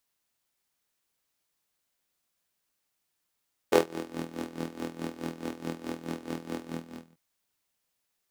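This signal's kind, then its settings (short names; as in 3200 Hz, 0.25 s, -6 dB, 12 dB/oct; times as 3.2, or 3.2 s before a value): synth patch with tremolo E2, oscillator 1 saw, oscillator 2 square, interval +12 st, detune 29 cents, sub -7.5 dB, noise -28 dB, filter highpass, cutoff 210 Hz, Q 3.5, filter envelope 1 oct, filter decay 0.42 s, filter sustain 40%, attack 3.8 ms, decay 0.14 s, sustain -17 dB, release 0.54 s, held 2.90 s, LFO 4.7 Hz, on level 15 dB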